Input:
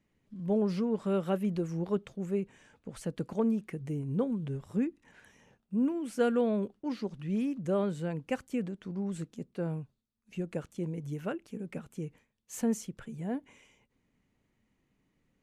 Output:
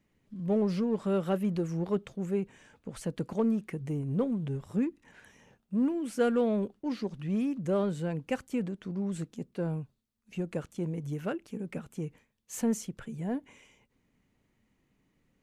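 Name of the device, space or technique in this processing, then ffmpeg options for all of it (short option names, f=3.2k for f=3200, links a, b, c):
parallel distortion: -filter_complex "[0:a]asplit=2[a][b];[b]asoftclip=type=hard:threshold=-34dB,volume=-10dB[c];[a][c]amix=inputs=2:normalize=0"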